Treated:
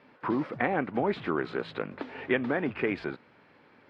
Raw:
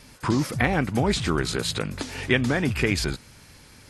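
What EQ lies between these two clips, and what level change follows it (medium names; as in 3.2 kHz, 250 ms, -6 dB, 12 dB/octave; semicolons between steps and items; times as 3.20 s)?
band-pass 310–7300 Hz; distance through air 460 m; treble shelf 3.2 kHz -8 dB; 0.0 dB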